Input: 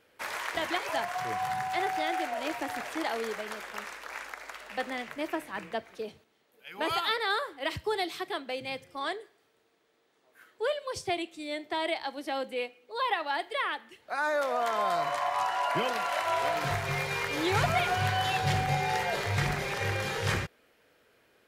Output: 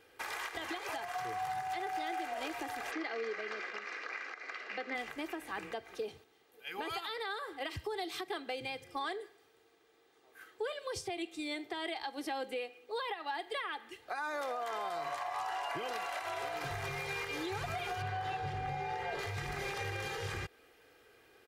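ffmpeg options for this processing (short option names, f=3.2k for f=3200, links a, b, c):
-filter_complex "[0:a]asplit=3[a][b][c];[a]afade=t=out:st=2.9:d=0.02[d];[b]highpass=f=190:w=0.5412,highpass=f=190:w=1.3066,equalizer=f=860:t=q:w=4:g=-10,equalizer=f=2.1k:t=q:w=4:g=4,equalizer=f=3.4k:t=q:w=4:g=-7,lowpass=f=5.1k:w=0.5412,lowpass=f=5.1k:w=1.3066,afade=t=in:st=2.9:d=0.02,afade=t=out:st=4.94:d=0.02[e];[c]afade=t=in:st=4.94:d=0.02[f];[d][e][f]amix=inputs=3:normalize=0,asettb=1/sr,asplit=3[g][h][i];[g]atrim=end=18.024[j];[h]atrim=start=18.02:end=19.19,asetpts=PTS-STARTPTS,afade=t=in:d=0.004:c=qsin,afade=t=out:st=1.166:d=0.004:c=qsin,lowpass=f=1.9k:p=1[k];[i]atrim=start=19.186[l];[j][k]acrossfade=d=0.004:c1=hsin:c2=qsin[m];[m][l]acrossfade=d=0.004:c1=qsin:c2=hsin,aecho=1:1:2.5:0.51,acompressor=threshold=-33dB:ratio=6,alimiter=level_in=6dB:limit=-24dB:level=0:latency=1:release=184,volume=-6dB,volume=1dB"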